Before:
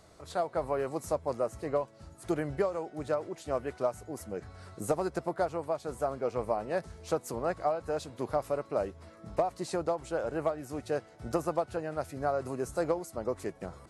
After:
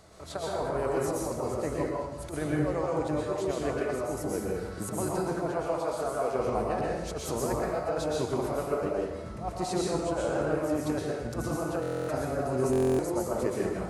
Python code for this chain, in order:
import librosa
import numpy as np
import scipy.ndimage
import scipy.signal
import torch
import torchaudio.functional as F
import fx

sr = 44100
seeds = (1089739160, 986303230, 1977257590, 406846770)

y = fx.low_shelf(x, sr, hz=410.0, db=-9.5, at=(5.52, 6.35))
y = fx.over_compress(y, sr, threshold_db=-32.0, ratio=-0.5)
y = fx.rev_plate(y, sr, seeds[0], rt60_s=1.0, hf_ratio=0.85, predelay_ms=105, drr_db=-4.0)
y = fx.buffer_glitch(y, sr, at_s=(11.81, 12.71), block=1024, repeats=11)